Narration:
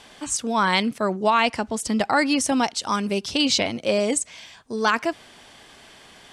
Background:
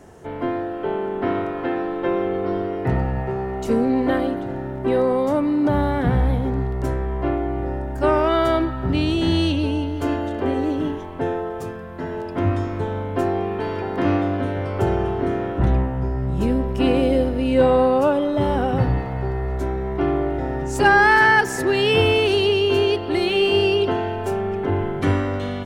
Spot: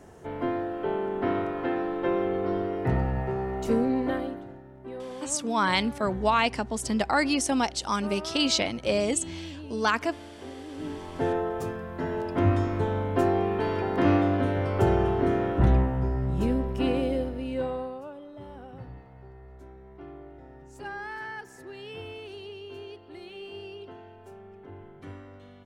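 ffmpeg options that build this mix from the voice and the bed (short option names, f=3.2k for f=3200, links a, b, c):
-filter_complex "[0:a]adelay=5000,volume=-4dB[a];[1:a]volume=13dB,afade=t=out:st=3.72:d=0.9:silence=0.177828,afade=t=in:st=10.7:d=0.65:silence=0.133352,afade=t=out:st=15.64:d=2.39:silence=0.0841395[b];[a][b]amix=inputs=2:normalize=0"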